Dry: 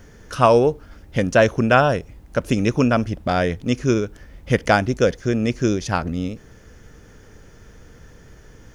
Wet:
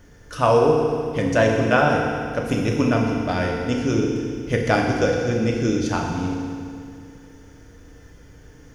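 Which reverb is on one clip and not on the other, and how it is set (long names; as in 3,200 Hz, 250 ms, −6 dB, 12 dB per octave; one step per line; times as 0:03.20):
feedback delay network reverb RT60 2.2 s, low-frequency decay 1.2×, high-frequency decay 1×, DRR −1 dB
level −5 dB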